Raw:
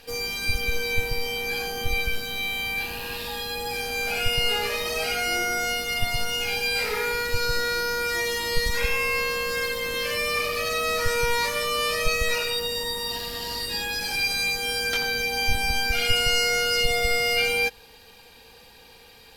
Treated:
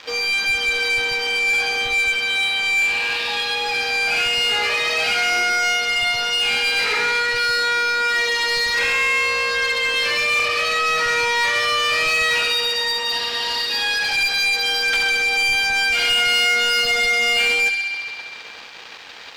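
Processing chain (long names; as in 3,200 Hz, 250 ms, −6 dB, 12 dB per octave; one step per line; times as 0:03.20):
spectral tilt +2.5 dB per octave
in parallel at −2 dB: downward compressor, threshold −36 dBFS, peak gain reduction 18.5 dB
on the sum: bit-depth reduction 6 bits, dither none
high-frequency loss of the air 190 metres
on a send: delay with a high-pass on its return 66 ms, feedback 79%, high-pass 1,700 Hz, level −8.5 dB
on the sum: mid-hump overdrive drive 16 dB, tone 6,200 Hz, clips at −12 dBFS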